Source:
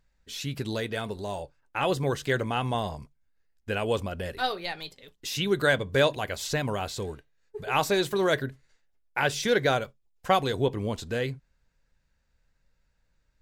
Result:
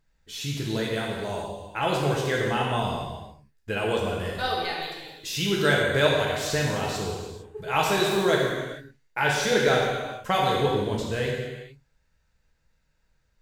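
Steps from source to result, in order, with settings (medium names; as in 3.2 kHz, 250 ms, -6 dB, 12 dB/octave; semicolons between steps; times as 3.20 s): gated-style reverb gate 480 ms falling, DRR -3 dB; trim -1.5 dB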